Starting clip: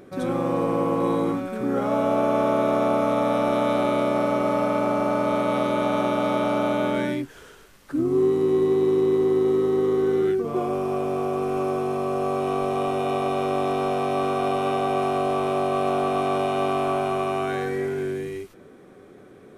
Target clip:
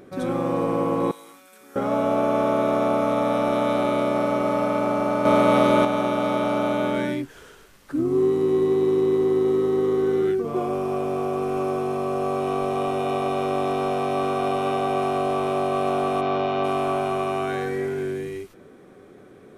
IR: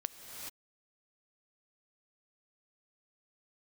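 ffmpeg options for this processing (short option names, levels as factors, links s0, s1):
-filter_complex "[0:a]asettb=1/sr,asplit=3[s0][s1][s2];[s0]atrim=end=1.114[s3];[s1]atrim=start=1.11:end=1.76,asetpts=PTS-STARTPTS,afade=t=in:d=0.004:c=qsin,afade=t=out:st=0.646:d=0.004:c=qsin,aderivative[s4];[s2]atrim=start=1.756[s5];[s3][s4]acrossfade=d=0.004:c1=hsin:c2=qsin[s6];[s6][s5]acrossfade=d=0.004:c1=qsin:c2=hsin,asettb=1/sr,asplit=3[s7][s8][s9];[s7]atrim=end=5.254[s10];[s8]atrim=start=5.25:end=5.85,asetpts=PTS-STARTPTS,afade=t=in:d=0.004:c=qsin,afade=t=out:st=0.596:d=0.004:c=qsin,acontrast=50[s11];[s9]atrim=start=5.846[s12];[s10][s11]acrossfade=d=0.004:c1=hsin:c2=qsin[s13];[s13][s12]acrossfade=d=0.004:c1=qsin:c2=hsin,asplit=3[s14][s15][s16];[s14]afade=t=out:st=16.2:d=0.02[s17];[s15]lowpass=f=5200:w=0.5412,lowpass=f=5200:w=1.3066,afade=t=in:st=16.2:d=0.02,afade=t=out:st=16.63:d=0.02[s18];[s16]afade=t=in:st=16.63:d=0.02[s19];[s17][s18][s19]amix=inputs=3:normalize=0"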